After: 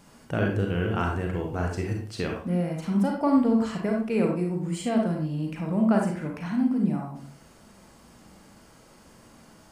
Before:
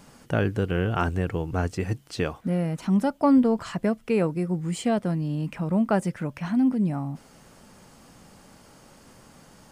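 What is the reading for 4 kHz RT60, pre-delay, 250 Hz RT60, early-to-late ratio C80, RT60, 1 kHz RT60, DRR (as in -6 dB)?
0.30 s, 34 ms, 0.50 s, 8.0 dB, 0.50 s, 0.50 s, 0.5 dB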